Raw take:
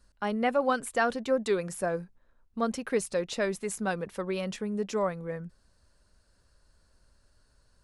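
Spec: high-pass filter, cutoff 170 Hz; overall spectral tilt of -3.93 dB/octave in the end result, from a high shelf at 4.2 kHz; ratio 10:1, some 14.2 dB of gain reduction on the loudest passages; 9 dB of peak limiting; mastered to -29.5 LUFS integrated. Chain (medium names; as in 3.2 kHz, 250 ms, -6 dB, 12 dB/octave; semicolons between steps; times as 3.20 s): high-pass 170 Hz; treble shelf 4.2 kHz +5 dB; compression 10:1, threshold -36 dBFS; trim +13 dB; peak limiter -19.5 dBFS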